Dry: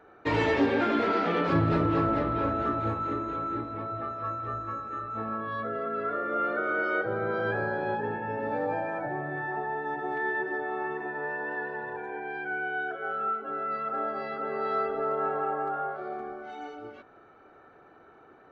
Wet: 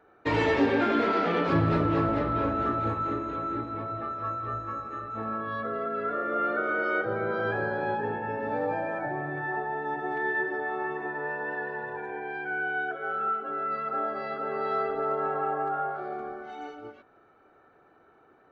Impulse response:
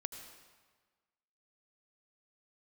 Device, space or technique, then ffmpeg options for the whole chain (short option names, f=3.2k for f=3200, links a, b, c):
keyed gated reverb: -filter_complex "[0:a]asplit=3[a][b][c];[1:a]atrim=start_sample=2205[d];[b][d]afir=irnorm=-1:irlink=0[e];[c]apad=whole_len=816518[f];[e][f]sidechaingate=range=-33dB:threshold=-41dB:ratio=16:detection=peak,volume=1.5dB[g];[a][g]amix=inputs=2:normalize=0,volume=-5dB"